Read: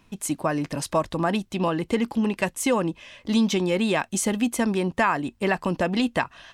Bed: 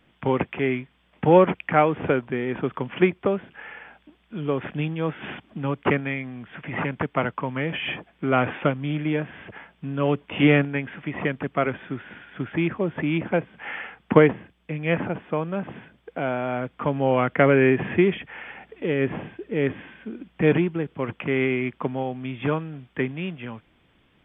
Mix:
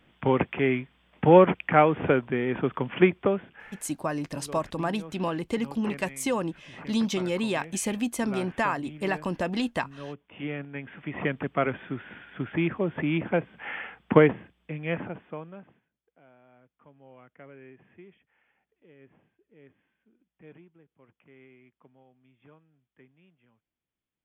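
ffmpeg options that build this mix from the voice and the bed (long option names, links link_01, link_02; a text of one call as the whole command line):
ffmpeg -i stem1.wav -i stem2.wav -filter_complex "[0:a]adelay=3600,volume=-5dB[link_01];[1:a]volume=14dB,afade=type=out:start_time=3.2:duration=0.7:silence=0.149624,afade=type=in:start_time=10.58:duration=0.71:silence=0.188365,afade=type=out:start_time=14.31:duration=1.5:silence=0.0354813[link_02];[link_01][link_02]amix=inputs=2:normalize=0" out.wav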